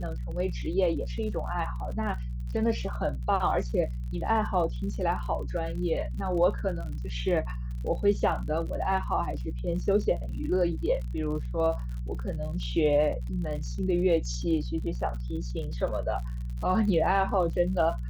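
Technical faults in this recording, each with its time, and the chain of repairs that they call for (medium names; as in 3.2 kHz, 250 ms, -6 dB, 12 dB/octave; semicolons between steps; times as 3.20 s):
crackle 49 per s -37 dBFS
hum 60 Hz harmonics 3 -33 dBFS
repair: de-click; de-hum 60 Hz, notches 3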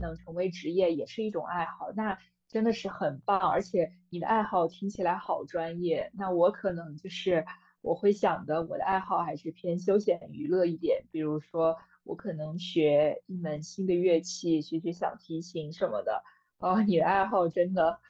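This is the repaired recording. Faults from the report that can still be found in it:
nothing left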